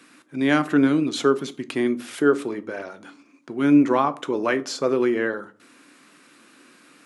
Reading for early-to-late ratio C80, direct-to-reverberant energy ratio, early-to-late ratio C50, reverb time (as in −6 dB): 24.5 dB, 11.0 dB, 19.0 dB, 0.45 s